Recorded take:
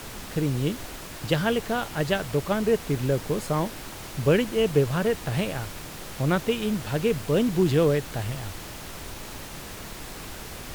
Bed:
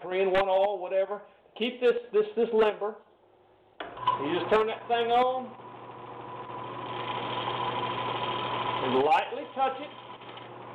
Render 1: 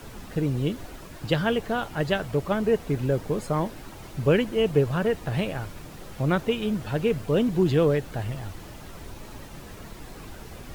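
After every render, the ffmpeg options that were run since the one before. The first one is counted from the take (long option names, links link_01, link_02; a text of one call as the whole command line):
ffmpeg -i in.wav -af "afftdn=noise_reduction=9:noise_floor=-39" out.wav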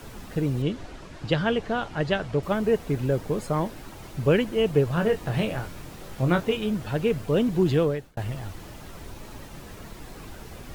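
ffmpeg -i in.wav -filter_complex "[0:a]asettb=1/sr,asplit=3[link_01][link_02][link_03];[link_01]atrim=end=0.624[link_04];[link_02]atrim=start=0.62:end=2.43,asetpts=PTS-STARTPTS,afade=type=in:duration=0.004:curve=qsin,afade=type=out:start_time=1.806:duration=0.004:curve=qsin,lowpass=6300[link_05];[link_03]atrim=start=2.426[link_06];[link_04][link_05]acrossfade=duration=0.004:curve1=hsin:curve2=qsin[link_07];[link_07][link_06]acrossfade=duration=0.004:curve1=qsin:curve2=hsin,asettb=1/sr,asplit=3[link_08][link_09][link_10];[link_08]atrim=end=4.954[link_11];[link_09]atrim=start=4.95:end=6.57,asetpts=PTS-STARTPTS,afade=type=in:duration=0.004:curve=qsin,afade=type=out:start_time=1.616:duration=0.004:curve=qsin,asplit=2[link_12][link_13];[link_13]adelay=23,volume=-6dB[link_14];[link_12][link_14]amix=inputs=2:normalize=0,atrim=end_sample=71442[link_15];[link_10]atrim=start=6.566[link_16];[link_11][link_15]acrossfade=duration=0.004:curve1=hsin:curve2=qsin[link_17];[link_17][link_16]acrossfade=duration=0.004:curve1=qsin:curve2=hsin,asplit=2[link_18][link_19];[link_18]atrim=end=8.17,asetpts=PTS-STARTPTS,afade=type=out:start_time=7.75:duration=0.42[link_20];[link_19]atrim=start=8.17,asetpts=PTS-STARTPTS,afade=type=in:duration=0.004:curve=hsin[link_21];[link_20][link_21]concat=n=2:v=0:a=1" out.wav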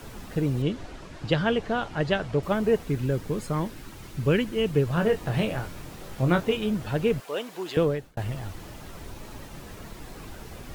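ffmpeg -i in.wav -filter_complex "[0:a]asettb=1/sr,asplit=3[link_01][link_02][link_03];[link_01]atrim=end=2.834[link_04];[link_02]atrim=start=2.83:end=4.89,asetpts=PTS-STARTPTS,afade=type=in:duration=0.004:curve=qsin,afade=type=out:start_time=2.056:duration=0.004:curve=qsin,equalizer=frequency=680:width_type=o:width=1.1:gain=-7[link_05];[link_03]atrim=start=4.886[link_06];[link_04][link_05]acrossfade=duration=0.004:curve1=hsin:curve2=qsin[link_07];[link_07][link_06]acrossfade=duration=0.004:curve1=qsin:curve2=hsin,asettb=1/sr,asplit=3[link_08][link_09][link_10];[link_08]atrim=end=7.204[link_11];[link_09]atrim=start=7.2:end=7.77,asetpts=PTS-STARTPTS,afade=type=in:duration=0.004:curve=qsin,afade=type=out:start_time=0.566:duration=0.004:curve=qsin,highpass=680[link_12];[link_10]atrim=start=7.766[link_13];[link_11][link_12]acrossfade=duration=0.004:curve1=hsin:curve2=qsin[link_14];[link_14][link_13]acrossfade=duration=0.004:curve1=qsin:curve2=hsin" out.wav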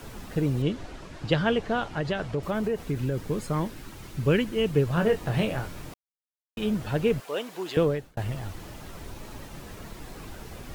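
ffmpeg -i in.wav -filter_complex "[0:a]asettb=1/sr,asplit=3[link_01][link_02][link_03];[link_01]atrim=end=1.864[link_04];[link_02]atrim=start=1.86:end=3.18,asetpts=PTS-STARTPTS,afade=type=in:duration=0.004:curve=qsin,afade=type=out:start_time=1.316:duration=0.004:curve=qsin,acompressor=threshold=-23dB:ratio=6:attack=3.2:release=140:knee=1:detection=peak[link_05];[link_03]atrim=start=3.176[link_06];[link_04][link_05]acrossfade=duration=0.004:curve1=hsin:curve2=qsin[link_07];[link_07][link_06]acrossfade=duration=0.004:curve1=qsin:curve2=hsin,asplit=3[link_08][link_09][link_10];[link_08]atrim=end=5.94,asetpts=PTS-STARTPTS,afade=type=out:start_time=5.936:duration=0.004:curve=hsin[link_11];[link_09]atrim=start=5.94:end=6.57,asetpts=PTS-STARTPTS,volume=0[link_12];[link_10]atrim=start=6.57,asetpts=PTS-STARTPTS,afade=type=in:duration=0.004:curve=hsin[link_13];[link_11][link_12][link_13]concat=n=3:v=0:a=1" out.wav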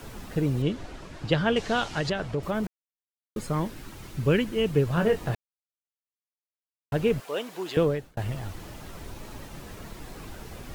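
ffmpeg -i in.wav -filter_complex "[0:a]asettb=1/sr,asplit=3[link_01][link_02][link_03];[link_01]atrim=end=1.564[link_04];[link_02]atrim=start=1.56:end=2.1,asetpts=PTS-STARTPTS,afade=type=in:duration=0.004:curve=qsin,afade=type=out:start_time=0.536:duration=0.004:curve=qsin,equalizer=frequency=6000:width=0.47:gain=12[link_05];[link_03]atrim=start=2.096[link_06];[link_04][link_05]acrossfade=duration=0.004:curve1=hsin:curve2=qsin[link_07];[link_07][link_06]acrossfade=duration=0.004:curve1=qsin:curve2=hsin,asplit=5[link_08][link_09][link_10][link_11][link_12];[link_08]atrim=end=2.67,asetpts=PTS-STARTPTS,afade=type=out:start_time=2.666:duration=0.004:curve=hsin[link_13];[link_09]atrim=start=2.67:end=3.36,asetpts=PTS-STARTPTS,volume=0[link_14];[link_10]atrim=start=3.36:end=5.35,asetpts=PTS-STARTPTS,afade=type=in:duration=0.004:curve=hsin,afade=type=out:start_time=1.986:duration=0.004:curve=hsin[link_15];[link_11]atrim=start=5.35:end=6.92,asetpts=PTS-STARTPTS,volume=0[link_16];[link_12]atrim=start=6.92,asetpts=PTS-STARTPTS,afade=type=in:duration=0.004:curve=hsin[link_17];[link_13][link_14][link_15][link_16][link_17]concat=n=5:v=0:a=1" out.wav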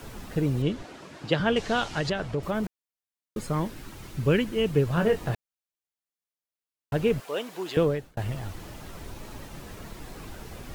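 ffmpeg -i in.wav -filter_complex "[0:a]asettb=1/sr,asplit=3[link_01][link_02][link_03];[link_01]atrim=end=0.824[link_04];[link_02]atrim=start=0.82:end=1.4,asetpts=PTS-STARTPTS,afade=type=in:duration=0.004:curve=qsin,afade=type=out:start_time=0.576:duration=0.004:curve=qsin,highpass=160[link_05];[link_03]atrim=start=1.396[link_06];[link_04][link_05]acrossfade=duration=0.004:curve1=hsin:curve2=qsin[link_07];[link_07][link_06]acrossfade=duration=0.004:curve1=qsin:curve2=hsin" out.wav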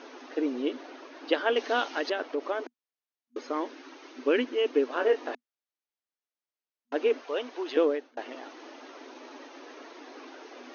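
ffmpeg -i in.wav -af "afftfilt=real='re*between(b*sr/4096,240,6600)':imag='im*between(b*sr/4096,240,6600)':win_size=4096:overlap=0.75,highshelf=frequency=4700:gain=-7" out.wav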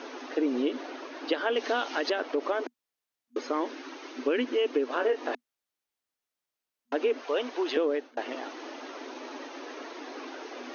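ffmpeg -i in.wav -filter_complex "[0:a]acrossover=split=130[link_01][link_02];[link_02]acompressor=threshold=-26dB:ratio=6[link_03];[link_01][link_03]amix=inputs=2:normalize=0,asplit=2[link_04][link_05];[link_05]alimiter=level_in=2.5dB:limit=-24dB:level=0:latency=1:release=87,volume=-2.5dB,volume=-1.5dB[link_06];[link_04][link_06]amix=inputs=2:normalize=0" out.wav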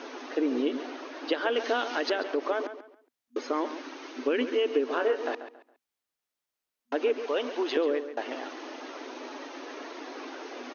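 ffmpeg -i in.wav -filter_complex "[0:a]asplit=2[link_01][link_02];[link_02]adelay=138,lowpass=frequency=4100:poles=1,volume=-11dB,asplit=2[link_03][link_04];[link_04]adelay=138,lowpass=frequency=4100:poles=1,volume=0.29,asplit=2[link_05][link_06];[link_06]adelay=138,lowpass=frequency=4100:poles=1,volume=0.29[link_07];[link_01][link_03][link_05][link_07]amix=inputs=4:normalize=0" out.wav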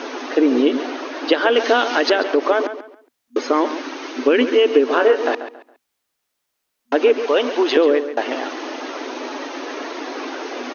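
ffmpeg -i in.wav -af "volume=12dB,alimiter=limit=-2dB:level=0:latency=1" out.wav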